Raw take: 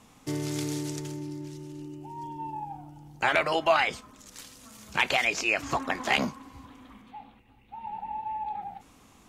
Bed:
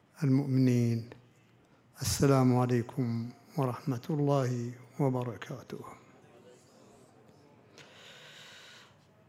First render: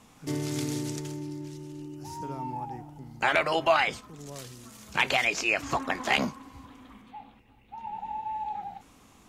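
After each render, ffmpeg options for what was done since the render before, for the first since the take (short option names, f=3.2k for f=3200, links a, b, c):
-filter_complex "[1:a]volume=-15.5dB[a];[0:a][a]amix=inputs=2:normalize=0"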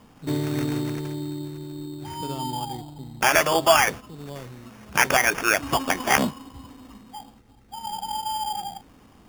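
-filter_complex "[0:a]asplit=2[a][b];[b]adynamicsmooth=sensitivity=7:basefreq=1.1k,volume=-0.5dB[c];[a][c]amix=inputs=2:normalize=0,acrusher=samples=11:mix=1:aa=0.000001"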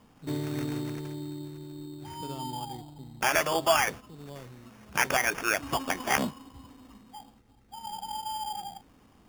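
-af "volume=-6.5dB"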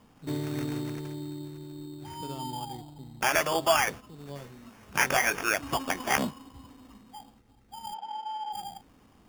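-filter_complex "[0:a]asettb=1/sr,asplit=3[a][b][c];[a]atrim=end=4.274[d];[b]atrim=start=4.27:end=5.48,asetpts=PTS-STARTPTS,afade=t=in:d=0.004:c=qsin,afade=t=out:st=1.206:d=0.004:c=qsin,asplit=2[e][f];[f]adelay=21,volume=-5.5dB[g];[e][g]amix=inputs=2:normalize=0,atrim=end_sample=53361[h];[c]atrim=start=5.476[i];[d][h]acrossfade=d=0.004:c1=hsin:c2=qsin[j];[j][i]acrossfade=d=0.004:c1=qsin:c2=hsin,asplit=3[k][l][m];[k]afade=t=out:st=7.93:d=0.02[n];[l]highpass=380,lowpass=2.6k,afade=t=in:st=7.93:d=0.02,afade=t=out:st=8.52:d=0.02[o];[m]afade=t=in:st=8.52:d=0.02[p];[n][o][p]amix=inputs=3:normalize=0"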